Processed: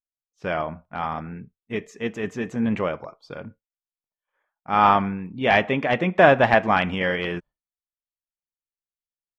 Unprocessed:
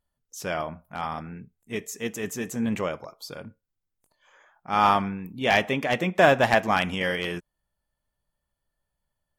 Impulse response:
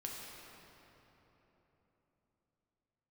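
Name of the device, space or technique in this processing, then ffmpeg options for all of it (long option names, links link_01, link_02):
hearing-loss simulation: -af "lowpass=2800,agate=range=-33dB:threshold=-44dB:ratio=3:detection=peak,volume=3.5dB"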